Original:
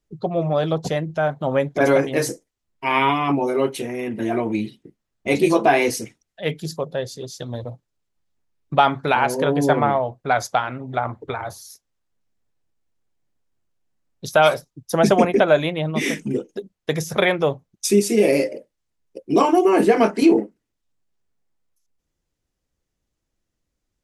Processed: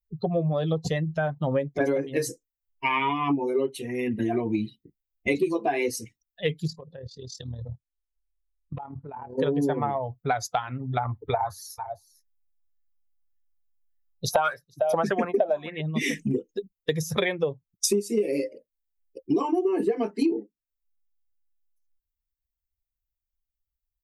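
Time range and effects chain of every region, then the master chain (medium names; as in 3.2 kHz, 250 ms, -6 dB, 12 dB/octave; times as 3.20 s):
6.67–9.38 s: low-pass that closes with the level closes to 950 Hz, closed at -18.5 dBFS + compression 16:1, threshold -27 dBFS + AM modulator 38 Hz, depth 50%
11.33–15.81 s: delay 451 ms -13 dB + sweeping bell 1.7 Hz 630–1800 Hz +16 dB
whole clip: expander on every frequency bin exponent 1.5; dynamic bell 380 Hz, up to +7 dB, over -31 dBFS, Q 0.95; compression 8:1, threshold -31 dBFS; trim +8.5 dB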